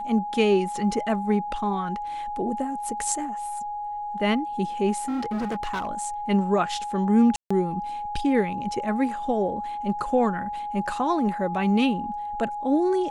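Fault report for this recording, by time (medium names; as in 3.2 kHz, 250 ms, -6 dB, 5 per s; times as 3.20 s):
whine 830 Hz -29 dBFS
5.05–5.87 s: clipped -24.5 dBFS
7.36–7.50 s: dropout 145 ms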